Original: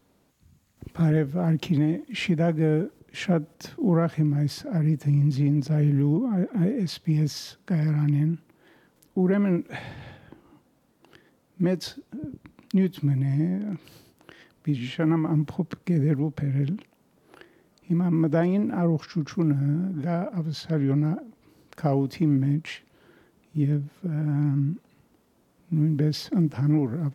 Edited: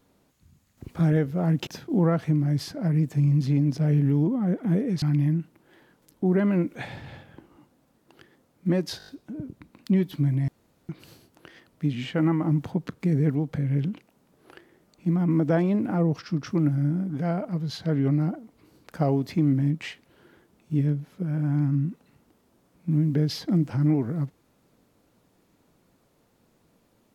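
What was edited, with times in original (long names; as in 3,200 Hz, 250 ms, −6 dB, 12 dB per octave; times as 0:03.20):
0:01.67–0:03.57: remove
0:06.92–0:07.96: remove
0:11.92: stutter 0.02 s, 6 plays
0:13.32–0:13.73: fill with room tone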